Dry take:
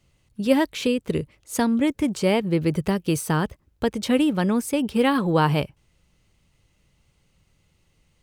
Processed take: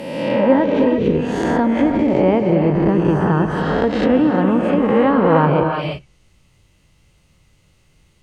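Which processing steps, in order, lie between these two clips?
reverse spectral sustain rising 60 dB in 1.41 s; gated-style reverb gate 370 ms rising, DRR 4 dB; low-pass that closes with the level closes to 1.3 kHz, closed at -15 dBFS; trim +3.5 dB

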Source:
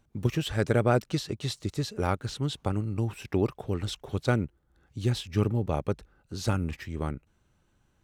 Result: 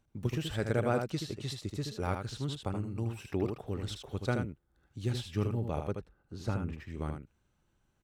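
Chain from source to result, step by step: 5.91–6.87 s: treble shelf 3.1 kHz -11 dB; delay 78 ms -6 dB; trim -6.5 dB

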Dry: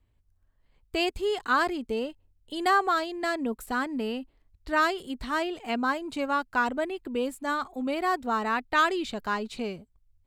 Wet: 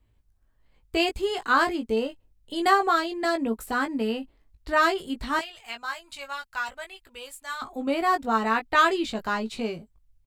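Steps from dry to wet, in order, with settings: 5.39–7.62 s: amplifier tone stack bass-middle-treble 10-0-10; doubling 18 ms -5.5 dB; trim +2 dB

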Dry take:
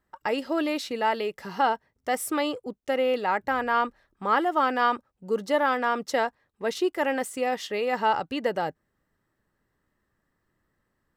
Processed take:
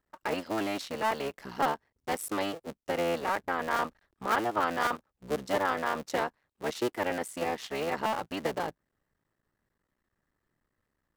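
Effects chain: cycle switcher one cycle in 3, muted; trim -3.5 dB

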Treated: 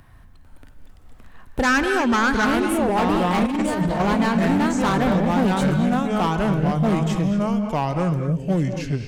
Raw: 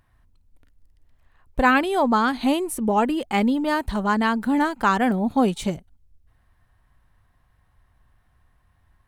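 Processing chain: ever faster or slower copies 448 ms, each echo -3 st, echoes 2; hard clipper -18.5 dBFS, distortion -10 dB; 1.63–2.45 s: fifteen-band graphic EQ 630 Hz -6 dB, 1.6 kHz +8 dB, 6.3 kHz +11 dB; reverberation, pre-delay 3 ms, DRR 7 dB; 3.46–4.00 s: compressor with a negative ratio -24 dBFS, ratio -0.5; bass shelf 330 Hz +4.5 dB; three bands compressed up and down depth 40%

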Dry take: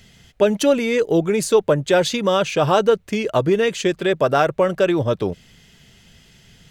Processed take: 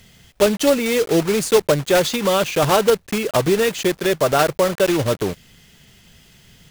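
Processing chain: block-companded coder 3-bit

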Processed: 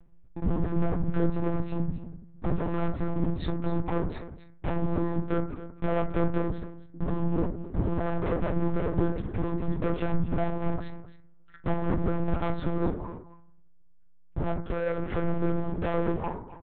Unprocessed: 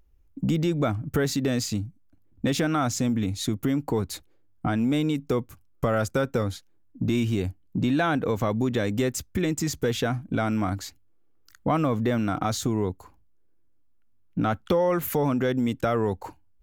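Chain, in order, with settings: low-pass 1.1 kHz 6 dB/octave; low-pass that closes with the level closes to 560 Hz, closed at -20 dBFS; compression 8:1, threshold -28 dBFS, peak gain reduction 9 dB; hard clipper -34.5 dBFS, distortion -7 dB; doubling 43 ms -13 dB; delay 265 ms -14.5 dB; reverberation RT60 0.55 s, pre-delay 3 ms, DRR 1.5 dB; monotone LPC vocoder at 8 kHz 170 Hz; trim +7 dB

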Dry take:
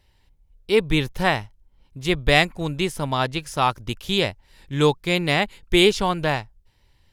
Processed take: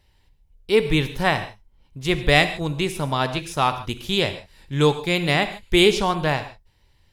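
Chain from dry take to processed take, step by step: gated-style reverb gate 170 ms flat, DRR 10 dB

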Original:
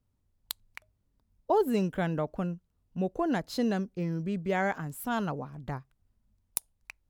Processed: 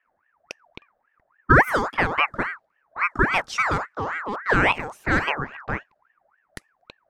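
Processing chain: graphic EQ 250/500/1000/2000/4000/8000 Hz -7/+6/+11/-7/+4/+4 dB; level-controlled noise filter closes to 1.7 kHz, open at -23 dBFS; ring modulator with a swept carrier 1.2 kHz, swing 50%, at 3.6 Hz; trim +7 dB

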